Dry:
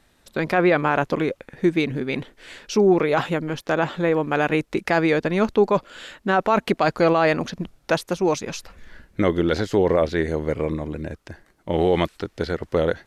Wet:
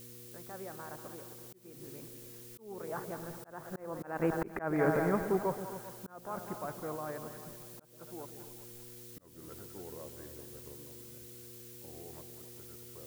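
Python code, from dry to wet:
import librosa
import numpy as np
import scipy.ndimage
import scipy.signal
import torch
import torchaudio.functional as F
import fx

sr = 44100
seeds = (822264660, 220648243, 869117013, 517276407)

p1 = fx.doppler_pass(x, sr, speed_mps=23, closest_m=3.4, pass_at_s=4.49)
p2 = scipy.signal.sosfilt(scipy.signal.butter(4, 1500.0, 'lowpass', fs=sr, output='sos'), p1)
p3 = fx.peak_eq(p2, sr, hz=310.0, db=-4.5, octaves=2.5)
p4 = fx.dmg_buzz(p3, sr, base_hz=120.0, harmonics=4, level_db=-59.0, tilt_db=-3, odd_only=False)
p5 = p4 + fx.echo_split(p4, sr, split_hz=570.0, low_ms=130, high_ms=195, feedback_pct=52, wet_db=-10.0, dry=0)
p6 = fx.dmg_noise_colour(p5, sr, seeds[0], colour='blue', level_db=-57.0)
p7 = p6 + 10.0 ** (-14.0 / 20.0) * np.pad(p6, (int(272 * sr / 1000.0), 0))[:len(p6)]
p8 = fx.auto_swell(p7, sr, attack_ms=349.0)
y = p8 * librosa.db_to_amplitude(4.5)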